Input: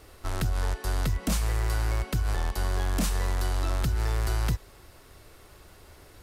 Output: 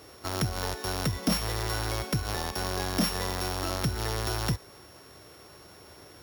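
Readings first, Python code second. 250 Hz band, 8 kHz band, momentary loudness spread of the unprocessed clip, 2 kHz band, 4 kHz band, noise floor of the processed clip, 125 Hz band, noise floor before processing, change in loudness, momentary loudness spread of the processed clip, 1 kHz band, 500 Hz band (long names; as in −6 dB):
+3.0 dB, +2.0 dB, 3 LU, +1.5 dB, +6.0 dB, −52 dBFS, −3.0 dB, −53 dBFS, −1.0 dB, 22 LU, +2.5 dB, +3.5 dB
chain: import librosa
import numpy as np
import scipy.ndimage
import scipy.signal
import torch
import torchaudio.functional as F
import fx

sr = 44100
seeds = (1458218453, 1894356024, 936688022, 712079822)

y = np.r_[np.sort(x[:len(x) // 8 * 8].reshape(-1, 8), axis=1).ravel(), x[len(x) // 8 * 8:]]
y = scipy.signal.sosfilt(scipy.signal.butter(2, 120.0, 'highpass', fs=sr, output='sos'), y)
y = F.gain(torch.from_numpy(y), 3.5).numpy()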